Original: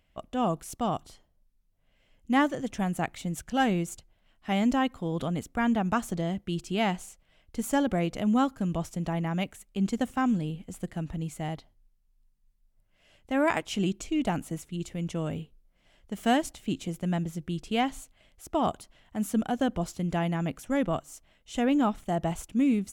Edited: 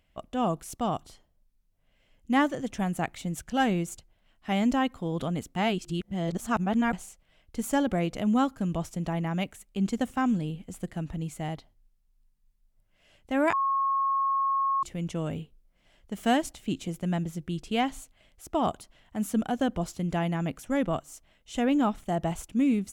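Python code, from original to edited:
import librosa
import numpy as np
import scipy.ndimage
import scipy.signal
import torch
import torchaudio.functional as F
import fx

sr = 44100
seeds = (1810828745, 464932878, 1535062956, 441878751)

y = fx.edit(x, sr, fx.reverse_span(start_s=5.56, length_s=1.37),
    fx.bleep(start_s=13.53, length_s=1.3, hz=1090.0, db=-23.0), tone=tone)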